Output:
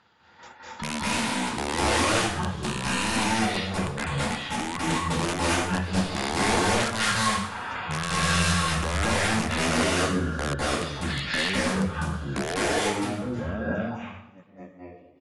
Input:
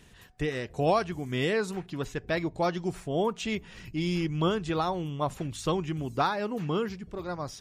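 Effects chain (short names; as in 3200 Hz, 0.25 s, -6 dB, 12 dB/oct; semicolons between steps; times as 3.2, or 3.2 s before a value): ending faded out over 2.53 s; weighting filter A; gate -53 dBFS, range -14 dB; low shelf 78 Hz -11 dB; in parallel at +1.5 dB: compressor 8:1, threshold -43 dBFS, peak gain reduction 20.5 dB; on the sum: limiter -24 dBFS, peak gain reduction 11 dB; wrapped overs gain 26.5 dB; outdoor echo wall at 30 m, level -22 dB; reverb RT60 0.35 s, pre-delay 98 ms, DRR -5.5 dB; speed mistake 15 ips tape played at 7.5 ips; gain +4 dB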